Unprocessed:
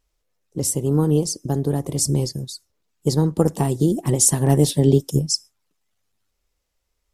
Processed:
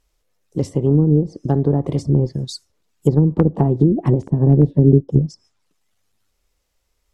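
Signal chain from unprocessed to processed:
wrap-around overflow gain 4 dB
treble cut that deepens with the level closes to 370 Hz, closed at −14 dBFS
level +5 dB

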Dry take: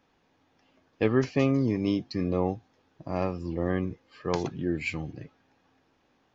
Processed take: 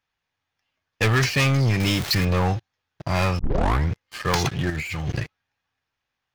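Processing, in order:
0:01.80–0:02.25: converter with a step at zero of −40 dBFS
drawn EQ curve 110 Hz 0 dB, 280 Hz −15 dB, 1,800 Hz +4 dB
leveller curve on the samples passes 5
0:03.39: tape start 0.53 s
0:04.70–0:05.20: compressor whose output falls as the input rises −26 dBFS, ratio −1
level −2 dB

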